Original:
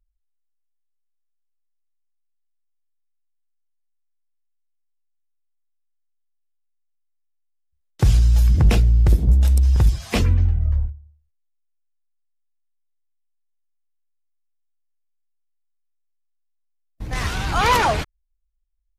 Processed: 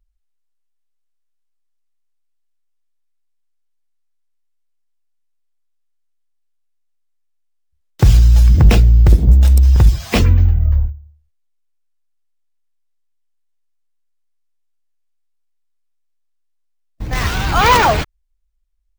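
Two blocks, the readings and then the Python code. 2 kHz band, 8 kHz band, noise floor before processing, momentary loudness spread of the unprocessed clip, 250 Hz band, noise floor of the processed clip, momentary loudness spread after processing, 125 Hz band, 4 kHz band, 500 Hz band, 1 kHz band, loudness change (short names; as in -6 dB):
+6.0 dB, +4.5 dB, -70 dBFS, 10 LU, +6.0 dB, -64 dBFS, 10 LU, +6.0 dB, +5.5 dB, +6.0 dB, +6.0 dB, +6.0 dB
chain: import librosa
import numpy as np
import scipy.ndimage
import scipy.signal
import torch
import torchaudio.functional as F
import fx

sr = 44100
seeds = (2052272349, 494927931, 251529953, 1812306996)

y = np.repeat(scipy.signal.resample_poly(x, 1, 2), 2)[:len(x)]
y = y * librosa.db_to_amplitude(6.0)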